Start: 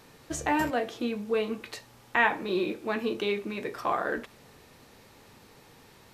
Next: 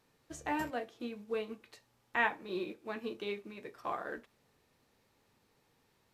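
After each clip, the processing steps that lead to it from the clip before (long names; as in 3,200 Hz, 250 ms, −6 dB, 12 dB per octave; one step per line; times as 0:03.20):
expander for the loud parts 1.5 to 1, over −43 dBFS
level −6.5 dB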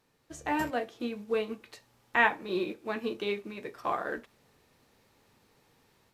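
automatic gain control gain up to 6.5 dB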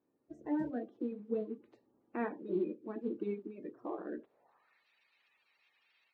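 spectral magnitudes quantised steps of 30 dB
band-pass filter sweep 300 Hz → 2,700 Hz, 0:04.18–0:04.86
level +2 dB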